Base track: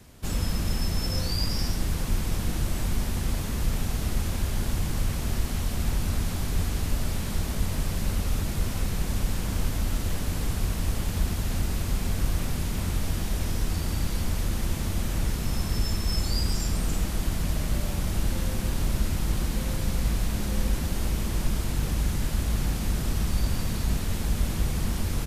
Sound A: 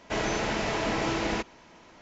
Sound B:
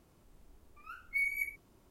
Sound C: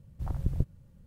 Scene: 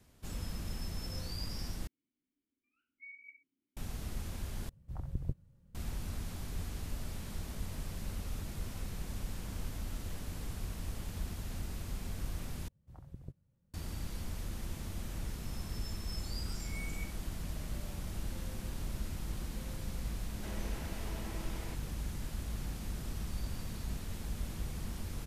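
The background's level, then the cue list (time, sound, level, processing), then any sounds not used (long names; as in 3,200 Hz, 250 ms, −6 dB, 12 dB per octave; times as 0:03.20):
base track −13 dB
0:01.87: overwrite with B −12.5 dB + formant filter i
0:04.69: overwrite with C −8 dB
0:12.68: overwrite with C −15.5 dB + low-shelf EQ 66 Hz −10.5 dB
0:15.61: mix in B −16 dB + peak hold with a rise ahead of every peak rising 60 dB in 0.55 s
0:20.33: mix in A −14 dB + downward compressor 2 to 1, threshold −36 dBFS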